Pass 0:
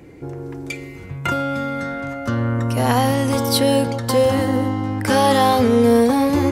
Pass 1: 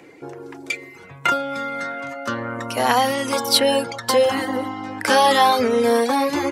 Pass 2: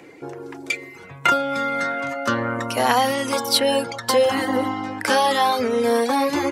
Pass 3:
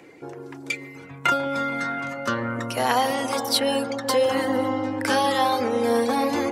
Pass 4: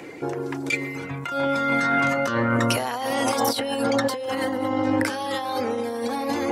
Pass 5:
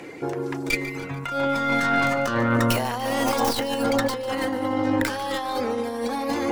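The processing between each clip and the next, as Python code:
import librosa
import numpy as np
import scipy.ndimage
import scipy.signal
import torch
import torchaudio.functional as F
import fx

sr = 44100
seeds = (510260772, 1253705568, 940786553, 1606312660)

y1 = fx.weighting(x, sr, curve='A')
y1 = fx.dereverb_blind(y1, sr, rt60_s=0.77)
y1 = F.gain(torch.from_numpy(y1), 3.5).numpy()
y2 = fx.rider(y1, sr, range_db=4, speed_s=0.5)
y3 = fx.echo_wet_lowpass(y2, sr, ms=145, feedback_pct=79, hz=860.0, wet_db=-8.5)
y3 = F.gain(torch.from_numpy(y3), -3.5).numpy()
y4 = fx.over_compress(y3, sr, threshold_db=-29.0, ratio=-1.0)
y4 = F.gain(torch.from_numpy(y4), 4.5).numpy()
y5 = fx.tracing_dist(y4, sr, depth_ms=0.16)
y5 = fx.echo_feedback(y5, sr, ms=146, feedback_pct=55, wet_db=-16)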